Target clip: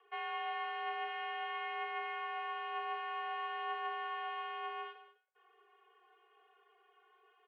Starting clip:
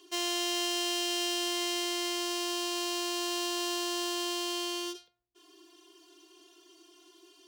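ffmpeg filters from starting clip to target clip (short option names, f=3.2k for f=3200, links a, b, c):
-af "flanger=delay=8.3:depth=3.4:regen=75:speed=0.53:shape=triangular,highpass=f=540:t=q:w=0.5412,highpass=f=540:t=q:w=1.307,lowpass=f=2.2k:t=q:w=0.5176,lowpass=f=2.2k:t=q:w=0.7071,lowpass=f=2.2k:t=q:w=1.932,afreqshift=56,aecho=1:1:203:0.178,volume=4.5dB"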